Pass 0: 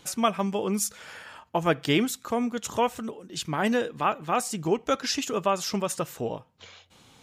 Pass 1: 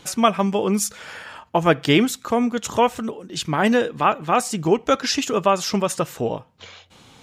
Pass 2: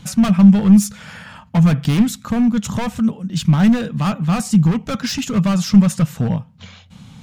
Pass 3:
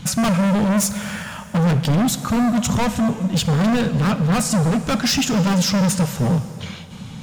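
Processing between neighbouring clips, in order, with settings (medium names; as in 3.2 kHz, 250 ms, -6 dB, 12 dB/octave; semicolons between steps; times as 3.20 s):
treble shelf 8.2 kHz -6 dB; trim +7 dB
hard clipper -19.5 dBFS, distortion -6 dB; resonant low shelf 260 Hz +10.5 dB, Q 3
overload inside the chain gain 21 dB; plate-style reverb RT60 2.9 s, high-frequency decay 0.9×, DRR 11 dB; trim +5.5 dB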